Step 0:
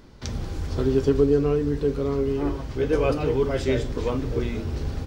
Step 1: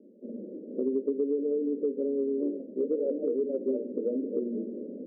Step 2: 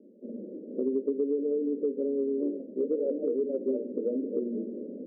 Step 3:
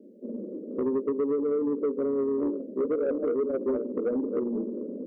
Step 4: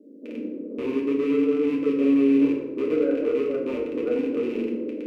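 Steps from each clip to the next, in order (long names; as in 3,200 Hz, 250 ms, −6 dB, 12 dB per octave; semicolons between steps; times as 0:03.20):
Chebyshev band-pass filter 200–590 Hz, order 5; downward compressor 6 to 1, threshold −25 dBFS, peak gain reduction 9.5 dB
no processing that can be heard
soft clipping −24 dBFS, distortion −16 dB; level +4 dB
loose part that buzzes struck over −35 dBFS, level −30 dBFS; feedback delay network reverb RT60 0.97 s, low-frequency decay 1.45×, high-frequency decay 0.65×, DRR −3.5 dB; level −3.5 dB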